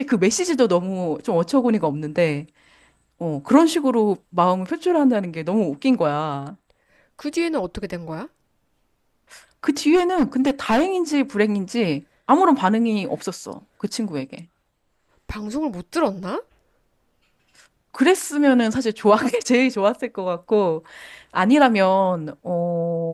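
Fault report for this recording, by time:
9.95–10.85 clipped -13 dBFS

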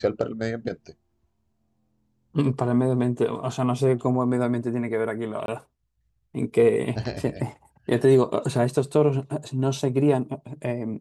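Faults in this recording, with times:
5.46–5.48 gap 22 ms

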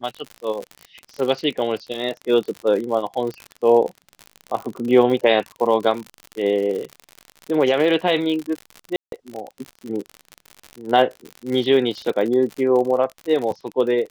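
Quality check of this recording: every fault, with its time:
crackle 65/s -26 dBFS
8.96–9.12 gap 0.162 s

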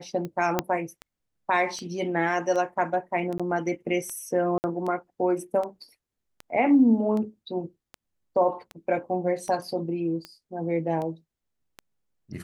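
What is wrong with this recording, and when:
tick 78 rpm -22 dBFS
0.59 pop -8 dBFS
3.38–3.4 gap 16 ms
4.58–4.64 gap 59 ms

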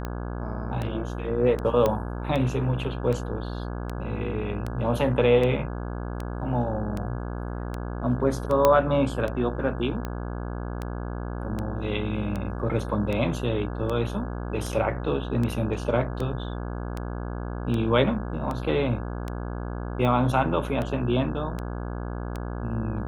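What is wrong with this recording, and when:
buzz 60 Hz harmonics 28 -32 dBFS
tick 78 rpm -18 dBFS
1.86 pop -11 dBFS
8.65 pop -6 dBFS

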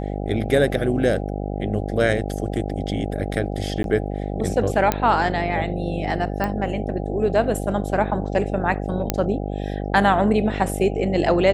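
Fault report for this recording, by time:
buzz 50 Hz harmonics 16 -27 dBFS
3.83–3.84 gap 12 ms
4.92 pop -5 dBFS
6.44 pop -12 dBFS
9.1 pop -3 dBFS

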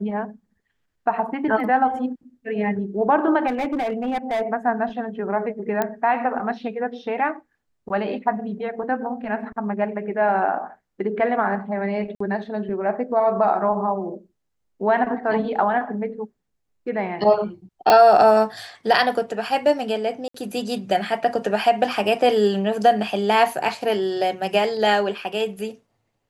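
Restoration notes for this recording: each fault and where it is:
3.47–4.42 clipped -20 dBFS
5.82 pop -9 dBFS
12.15–12.2 gap 54 ms
17.9 pop -3 dBFS
20.28–20.34 gap 64 ms

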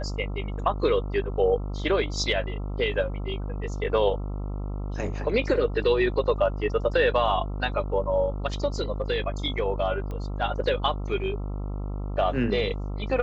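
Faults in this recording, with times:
buzz 50 Hz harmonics 27 -31 dBFS
10.11 pop -24 dBFS

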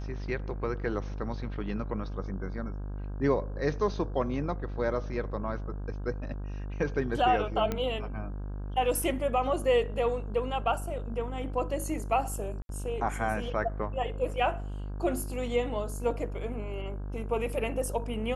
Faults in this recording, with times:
buzz 50 Hz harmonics 33 -36 dBFS
7.72 pop -17 dBFS
12.62–12.69 gap 72 ms

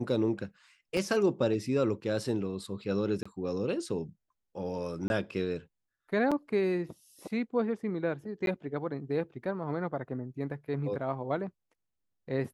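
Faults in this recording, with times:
0.97 gap 2.4 ms
3.23–3.25 gap 25 ms
5.08–5.1 gap 21 ms
6.31–6.32 gap 6.2 ms
8.46–8.47 gap 12 ms

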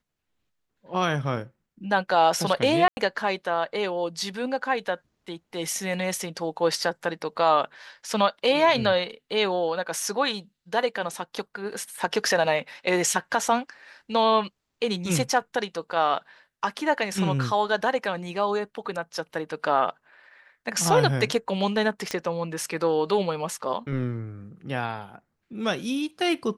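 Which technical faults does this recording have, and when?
2.88–2.97 gap 90 ms
22.11 pop -13 dBFS

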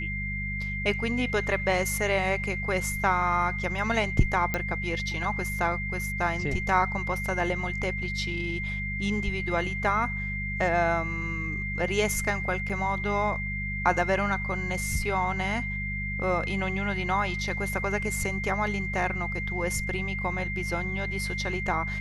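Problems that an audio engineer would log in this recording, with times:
hum 50 Hz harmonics 4 -34 dBFS
tone 2100 Hz -32 dBFS
4.54 pop -13 dBFS
12.69–12.7 gap 6.7 ms

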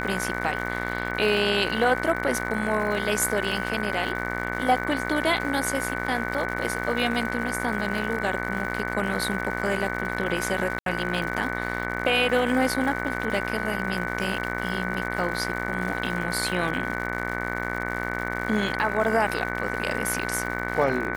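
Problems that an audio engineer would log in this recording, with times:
buzz 60 Hz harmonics 38 -31 dBFS
crackle 190/s -32 dBFS
tone 1500 Hz -33 dBFS
10.79–10.86 gap 72 ms

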